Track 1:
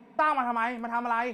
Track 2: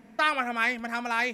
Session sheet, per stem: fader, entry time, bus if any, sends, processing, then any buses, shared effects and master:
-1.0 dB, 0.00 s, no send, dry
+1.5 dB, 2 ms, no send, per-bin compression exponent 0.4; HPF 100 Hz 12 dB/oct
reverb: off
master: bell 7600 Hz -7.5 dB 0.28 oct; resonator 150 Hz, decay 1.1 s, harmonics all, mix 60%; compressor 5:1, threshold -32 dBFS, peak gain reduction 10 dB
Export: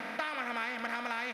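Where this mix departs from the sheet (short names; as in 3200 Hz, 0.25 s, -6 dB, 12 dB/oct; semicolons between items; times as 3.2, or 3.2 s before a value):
stem 1 -1.0 dB -> -10.0 dB; stem 2: polarity flipped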